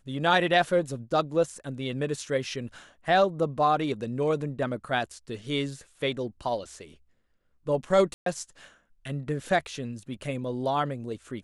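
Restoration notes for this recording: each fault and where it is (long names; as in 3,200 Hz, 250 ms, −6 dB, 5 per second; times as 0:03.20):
0:08.14–0:08.26: drop-out 123 ms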